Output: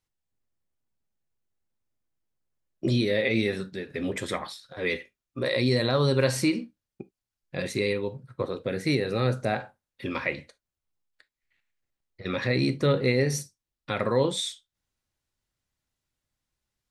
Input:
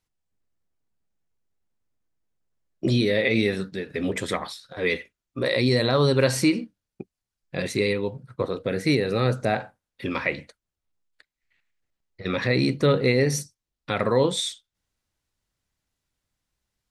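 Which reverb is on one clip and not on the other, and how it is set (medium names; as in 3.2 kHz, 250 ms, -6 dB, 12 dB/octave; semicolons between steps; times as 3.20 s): gated-style reverb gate 90 ms falling, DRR 12 dB; trim -3.5 dB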